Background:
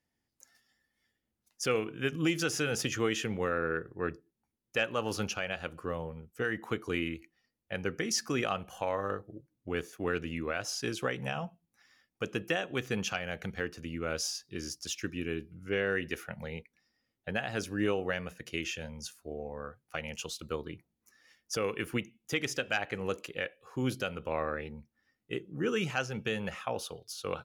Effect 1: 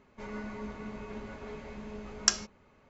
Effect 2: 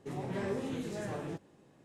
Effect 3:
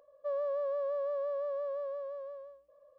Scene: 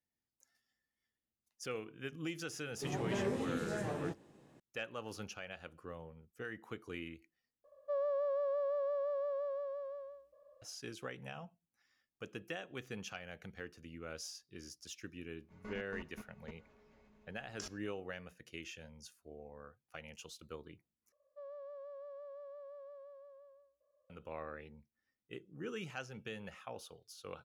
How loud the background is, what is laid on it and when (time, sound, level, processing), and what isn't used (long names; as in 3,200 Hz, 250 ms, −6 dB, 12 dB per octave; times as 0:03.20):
background −12 dB
0:02.76: mix in 2 −0.5 dB
0:07.64: overwrite with 3 −1.5 dB
0:15.32: mix in 1 −6 dB + output level in coarse steps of 20 dB
0:21.12: overwrite with 3 −15.5 dB